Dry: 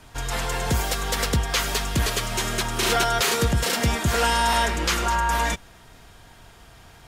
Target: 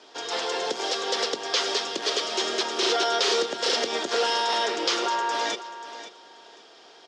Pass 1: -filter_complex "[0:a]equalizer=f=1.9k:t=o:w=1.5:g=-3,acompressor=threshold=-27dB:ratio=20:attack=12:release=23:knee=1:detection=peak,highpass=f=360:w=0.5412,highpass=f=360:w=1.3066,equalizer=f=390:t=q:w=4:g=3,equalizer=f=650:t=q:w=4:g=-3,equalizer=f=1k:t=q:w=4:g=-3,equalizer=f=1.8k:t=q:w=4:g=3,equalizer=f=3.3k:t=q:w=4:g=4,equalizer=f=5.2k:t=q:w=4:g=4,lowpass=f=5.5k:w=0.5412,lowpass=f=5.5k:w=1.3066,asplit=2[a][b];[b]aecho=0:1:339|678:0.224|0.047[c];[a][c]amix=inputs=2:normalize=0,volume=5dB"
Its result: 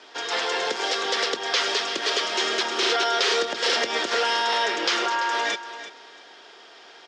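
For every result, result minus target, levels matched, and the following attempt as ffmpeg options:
echo 0.196 s early; 2000 Hz band +4.0 dB
-filter_complex "[0:a]equalizer=f=1.9k:t=o:w=1.5:g=-3,acompressor=threshold=-27dB:ratio=20:attack=12:release=23:knee=1:detection=peak,highpass=f=360:w=0.5412,highpass=f=360:w=1.3066,equalizer=f=390:t=q:w=4:g=3,equalizer=f=650:t=q:w=4:g=-3,equalizer=f=1k:t=q:w=4:g=-3,equalizer=f=1.8k:t=q:w=4:g=3,equalizer=f=3.3k:t=q:w=4:g=4,equalizer=f=5.2k:t=q:w=4:g=4,lowpass=f=5.5k:w=0.5412,lowpass=f=5.5k:w=1.3066,asplit=2[a][b];[b]aecho=0:1:535|1070:0.224|0.047[c];[a][c]amix=inputs=2:normalize=0,volume=5dB"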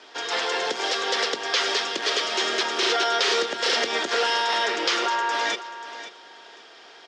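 2000 Hz band +4.0 dB
-filter_complex "[0:a]equalizer=f=1.9k:t=o:w=1.5:g=-11,acompressor=threshold=-27dB:ratio=20:attack=12:release=23:knee=1:detection=peak,highpass=f=360:w=0.5412,highpass=f=360:w=1.3066,equalizer=f=390:t=q:w=4:g=3,equalizer=f=650:t=q:w=4:g=-3,equalizer=f=1k:t=q:w=4:g=-3,equalizer=f=1.8k:t=q:w=4:g=3,equalizer=f=3.3k:t=q:w=4:g=4,equalizer=f=5.2k:t=q:w=4:g=4,lowpass=f=5.5k:w=0.5412,lowpass=f=5.5k:w=1.3066,asplit=2[a][b];[b]aecho=0:1:535|1070:0.224|0.047[c];[a][c]amix=inputs=2:normalize=0,volume=5dB"

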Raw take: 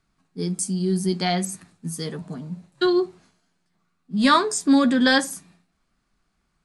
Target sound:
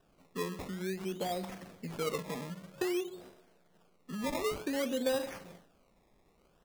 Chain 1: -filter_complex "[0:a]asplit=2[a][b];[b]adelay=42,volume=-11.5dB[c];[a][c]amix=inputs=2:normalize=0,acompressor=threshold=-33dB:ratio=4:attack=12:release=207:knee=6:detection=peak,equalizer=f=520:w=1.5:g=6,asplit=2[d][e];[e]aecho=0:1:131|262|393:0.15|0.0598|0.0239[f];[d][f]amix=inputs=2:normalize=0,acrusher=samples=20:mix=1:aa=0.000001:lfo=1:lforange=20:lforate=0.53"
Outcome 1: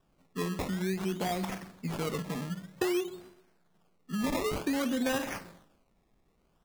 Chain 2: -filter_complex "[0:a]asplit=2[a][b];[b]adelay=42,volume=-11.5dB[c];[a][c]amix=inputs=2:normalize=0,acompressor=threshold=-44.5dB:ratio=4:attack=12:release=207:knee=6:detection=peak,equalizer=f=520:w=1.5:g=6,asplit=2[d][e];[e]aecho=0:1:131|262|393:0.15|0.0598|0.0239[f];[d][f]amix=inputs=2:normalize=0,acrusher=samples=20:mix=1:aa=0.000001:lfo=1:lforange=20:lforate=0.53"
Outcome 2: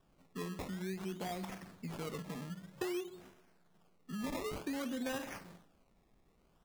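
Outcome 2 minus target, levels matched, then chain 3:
500 Hz band -2.5 dB
-filter_complex "[0:a]asplit=2[a][b];[b]adelay=42,volume=-11.5dB[c];[a][c]amix=inputs=2:normalize=0,acompressor=threshold=-44.5dB:ratio=4:attack=12:release=207:knee=6:detection=peak,equalizer=f=520:w=1.5:g=17.5,asplit=2[d][e];[e]aecho=0:1:131|262|393:0.15|0.0598|0.0239[f];[d][f]amix=inputs=2:normalize=0,acrusher=samples=20:mix=1:aa=0.000001:lfo=1:lforange=20:lforate=0.53"

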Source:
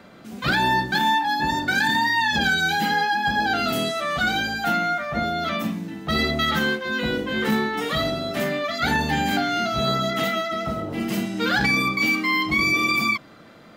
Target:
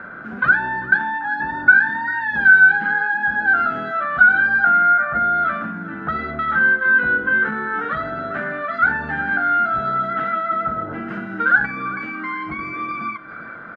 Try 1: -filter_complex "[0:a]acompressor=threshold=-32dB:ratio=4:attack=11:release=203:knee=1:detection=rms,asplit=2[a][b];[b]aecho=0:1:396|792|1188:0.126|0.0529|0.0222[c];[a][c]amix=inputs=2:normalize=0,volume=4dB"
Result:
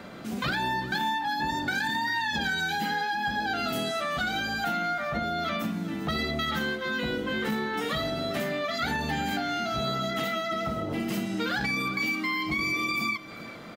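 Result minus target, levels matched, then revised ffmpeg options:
2000 Hz band -4.0 dB
-filter_complex "[0:a]acompressor=threshold=-32dB:ratio=4:attack=11:release=203:knee=1:detection=rms,lowpass=f=1.5k:t=q:w=12,asplit=2[a][b];[b]aecho=0:1:396|792|1188:0.126|0.0529|0.0222[c];[a][c]amix=inputs=2:normalize=0,volume=4dB"

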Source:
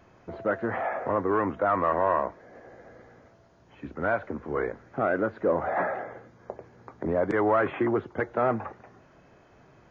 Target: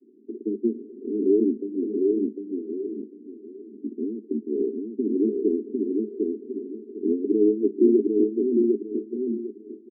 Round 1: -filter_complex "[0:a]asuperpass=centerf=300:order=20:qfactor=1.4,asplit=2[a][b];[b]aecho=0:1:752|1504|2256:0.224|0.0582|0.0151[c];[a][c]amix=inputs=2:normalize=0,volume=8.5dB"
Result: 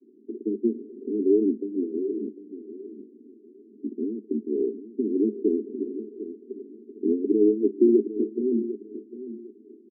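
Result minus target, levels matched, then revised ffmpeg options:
echo-to-direct -10 dB
-filter_complex "[0:a]asuperpass=centerf=300:order=20:qfactor=1.4,asplit=2[a][b];[b]aecho=0:1:752|1504|2256|3008:0.708|0.184|0.0479|0.0124[c];[a][c]amix=inputs=2:normalize=0,volume=8.5dB"

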